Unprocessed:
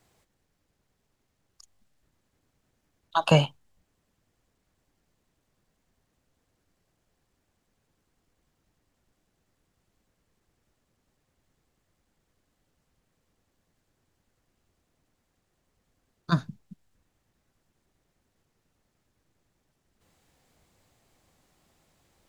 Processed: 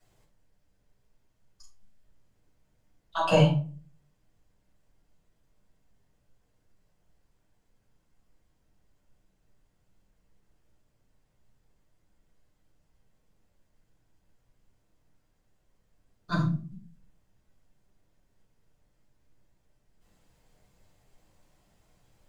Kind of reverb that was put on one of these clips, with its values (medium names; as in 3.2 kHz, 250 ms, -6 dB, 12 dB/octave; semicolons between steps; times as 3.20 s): simulated room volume 240 m³, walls furnished, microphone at 6.3 m; trim -12 dB